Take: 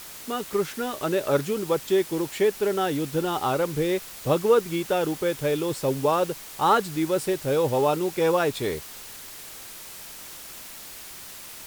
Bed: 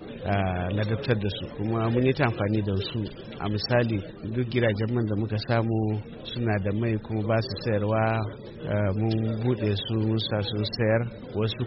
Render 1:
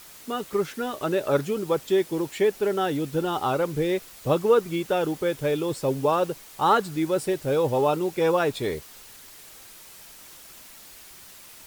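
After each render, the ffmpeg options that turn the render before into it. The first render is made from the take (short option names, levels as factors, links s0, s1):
-af "afftdn=nr=6:nf=-41"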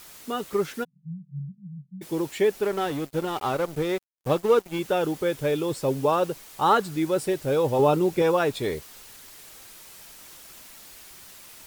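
-filter_complex "[0:a]asplit=3[s0][s1][s2];[s0]afade=t=out:st=0.83:d=0.02[s3];[s1]asuperpass=centerf=160:order=12:qfactor=2.8,afade=t=in:st=0.83:d=0.02,afade=t=out:st=2.01:d=0.02[s4];[s2]afade=t=in:st=2.01:d=0.02[s5];[s3][s4][s5]amix=inputs=3:normalize=0,asettb=1/sr,asplit=3[s6][s7][s8];[s6]atrim=end=2.634[s9];[s7]atrim=start=2.63:end=4.79,asetpts=PTS-STARTPTS,afade=t=in:d=0.004:c=qsin,afade=t=out:st=2.156:d=0.004:c=qsin,aeval=exprs='sgn(val(0))*max(abs(val(0))-0.0168,0)':c=same[s10];[s8]atrim=start=4.786[s11];[s9][s10]acrossfade=d=0.004:c1=hsin:c2=qsin[s12];[s12][s11]acrossfade=d=0.004:c1=qsin:c2=hsin,asettb=1/sr,asplit=3[s13][s14][s15];[s13]atrim=end=7.794[s16];[s14]atrim=start=7.79:end=8.22,asetpts=PTS-STARTPTS,afade=t=in:d=0.004:c=qsin,afade=t=out:st=0.426:d=0.004:c=qsin,lowshelf=f=400:g=7[s17];[s15]atrim=start=8.216[s18];[s16][s17]acrossfade=d=0.004:c1=hsin:c2=qsin[s19];[s19][s18]acrossfade=d=0.004:c1=qsin:c2=hsin"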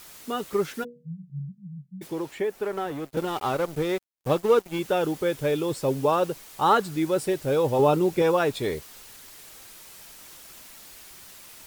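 -filter_complex "[0:a]asettb=1/sr,asplit=3[s0][s1][s2];[s0]atrim=end=0.804[s3];[s1]atrim=start=0.8:end=1.3,asetpts=PTS-STARTPTS,afade=t=in:d=0.004:c=qsin,afade=t=out:st=0.496:d=0.004:c=qsin,bandreject=f=60:t=h:w=6,bandreject=f=120:t=h:w=6,bandreject=f=180:t=h:w=6,bandreject=f=240:t=h:w=6,bandreject=f=300:t=h:w=6,bandreject=f=360:t=h:w=6,bandreject=f=420:t=h:w=6,bandreject=f=480:t=h:w=6,bandreject=f=540:t=h:w=6,bandreject=f=600:t=h:w=6[s4];[s2]atrim=start=1.296[s5];[s3][s4]acrossfade=d=0.004:c1=hsin:c2=qsin[s6];[s6][s5]acrossfade=d=0.004:c1=qsin:c2=hsin,asettb=1/sr,asplit=3[s7][s8][s9];[s7]atrim=end=2.074[s10];[s8]atrim=start=2.07:end=3.17,asetpts=PTS-STARTPTS,afade=t=in:d=0.004:c=qsin,afade=t=out:st=1.096:d=0.004:c=qsin,acrossover=split=430|2200|5600[s11][s12][s13][s14];[s11]acompressor=threshold=0.0178:ratio=3[s15];[s12]acompressor=threshold=0.0398:ratio=3[s16];[s13]acompressor=threshold=0.00158:ratio=3[s17];[s14]acompressor=threshold=0.00178:ratio=3[s18];[s15][s16][s17][s18]amix=inputs=4:normalize=0[s19];[s9]atrim=start=3.166[s20];[s10][s19]acrossfade=d=0.004:c1=hsin:c2=qsin[s21];[s21][s20]acrossfade=d=0.004:c1=qsin:c2=hsin"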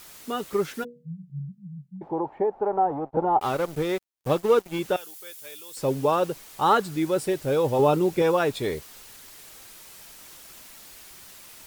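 -filter_complex "[0:a]asettb=1/sr,asplit=3[s0][s1][s2];[s0]atrim=end=1.964[s3];[s1]atrim=start=1.96:end=3.41,asetpts=PTS-STARTPTS,afade=t=in:d=0.004:c=qsin,afade=t=out:st=1.446:d=0.004:c=qsin,lowpass=f=830:t=q:w=5.4[s4];[s2]atrim=start=3.406[s5];[s3][s4]acrossfade=d=0.004:c1=hsin:c2=qsin[s6];[s6][s5]acrossfade=d=0.004:c1=qsin:c2=hsin,asettb=1/sr,asplit=3[s7][s8][s9];[s7]atrim=end=4.964[s10];[s8]atrim=start=4.96:end=5.77,asetpts=PTS-STARTPTS,afade=t=in:d=0.004:c=qsin,afade=t=out:st=0.806:d=0.004:c=qsin,aderivative[s11];[s9]atrim=start=5.766[s12];[s10][s11]acrossfade=d=0.004:c1=hsin:c2=qsin[s13];[s13][s12]acrossfade=d=0.004:c1=qsin:c2=hsin"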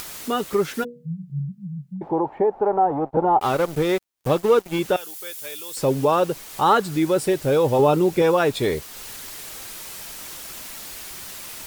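-filter_complex "[0:a]asplit=2[s0][s1];[s1]alimiter=limit=0.0944:level=0:latency=1:release=172,volume=1.19[s2];[s0][s2]amix=inputs=2:normalize=0,acompressor=mode=upward:threshold=0.0316:ratio=2.5"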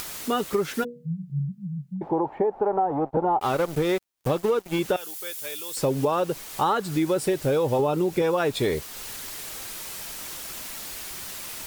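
-af "acompressor=threshold=0.112:ratio=10"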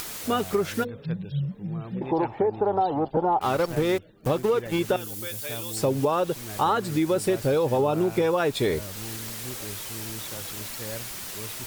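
-filter_complex "[1:a]volume=0.188[s0];[0:a][s0]amix=inputs=2:normalize=0"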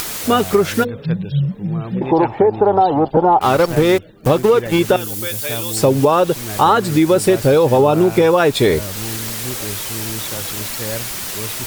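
-af "volume=3.35,alimiter=limit=0.794:level=0:latency=1"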